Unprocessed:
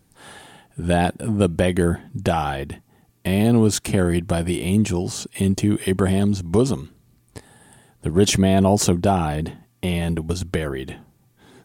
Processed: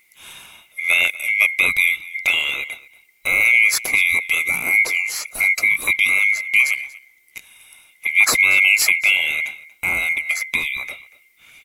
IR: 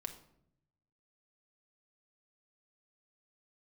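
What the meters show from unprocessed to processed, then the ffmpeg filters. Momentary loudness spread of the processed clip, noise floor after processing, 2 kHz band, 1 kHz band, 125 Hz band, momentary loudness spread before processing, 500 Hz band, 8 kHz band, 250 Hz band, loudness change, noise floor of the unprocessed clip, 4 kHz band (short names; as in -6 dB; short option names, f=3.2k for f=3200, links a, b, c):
13 LU, -57 dBFS, +19.5 dB, -8.0 dB, under -25 dB, 13 LU, -17.0 dB, +3.5 dB, -24.5 dB, +5.0 dB, -61 dBFS, +6.0 dB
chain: -af "afftfilt=real='real(if(lt(b,920),b+92*(1-2*mod(floor(b/92),2)),b),0)':imag='imag(if(lt(b,920),b+92*(1-2*mod(floor(b/92),2)),b),0)':win_size=2048:overlap=0.75,highshelf=f=9.1k:g=8.5,aecho=1:1:236:0.1,volume=1dB"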